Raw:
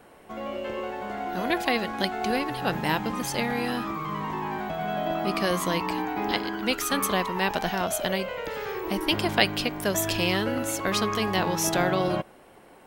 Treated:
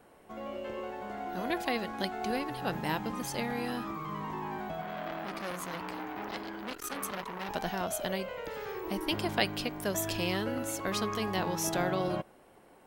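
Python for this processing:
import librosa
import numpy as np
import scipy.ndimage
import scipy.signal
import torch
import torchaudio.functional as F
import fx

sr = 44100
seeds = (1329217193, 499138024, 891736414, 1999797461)

y = fx.peak_eq(x, sr, hz=2600.0, db=-2.5, octaves=1.9)
y = fx.transformer_sat(y, sr, knee_hz=3900.0, at=(4.81, 7.49))
y = y * librosa.db_to_amplitude(-6.0)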